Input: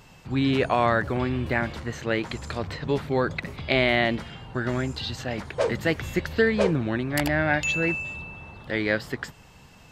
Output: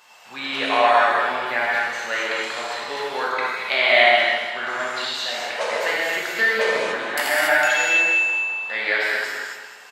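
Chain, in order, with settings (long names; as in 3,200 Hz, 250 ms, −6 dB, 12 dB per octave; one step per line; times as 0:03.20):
Chebyshev high-pass filter 900 Hz, order 2
on a send: repeating echo 207 ms, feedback 40%, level −10 dB
on the sum: reverb whose tail is shaped and stops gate 310 ms flat, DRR −6.5 dB
level +1.5 dB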